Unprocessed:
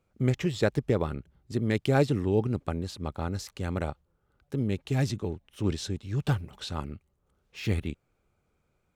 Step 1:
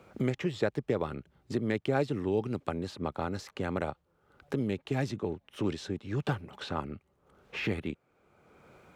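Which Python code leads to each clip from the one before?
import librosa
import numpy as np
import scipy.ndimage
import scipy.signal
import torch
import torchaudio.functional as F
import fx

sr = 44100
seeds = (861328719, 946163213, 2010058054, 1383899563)

y = fx.highpass(x, sr, hz=290.0, slope=6)
y = fx.high_shelf(y, sr, hz=4100.0, db=-12.0)
y = fx.band_squash(y, sr, depth_pct=70)
y = F.gain(torch.from_numpy(y), 1.0).numpy()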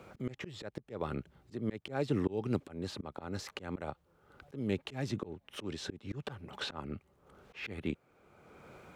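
y = fx.auto_swell(x, sr, attack_ms=290.0)
y = F.gain(torch.from_numpy(y), 3.0).numpy()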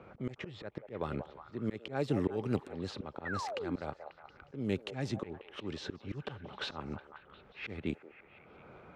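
y = fx.echo_stepped(x, sr, ms=180, hz=650.0, octaves=0.7, feedback_pct=70, wet_db=-6)
y = fx.spec_paint(y, sr, seeds[0], shape='fall', start_s=3.25, length_s=0.51, low_hz=240.0, high_hz=2000.0, level_db=-39.0)
y = fx.env_lowpass(y, sr, base_hz=2100.0, full_db=-29.5)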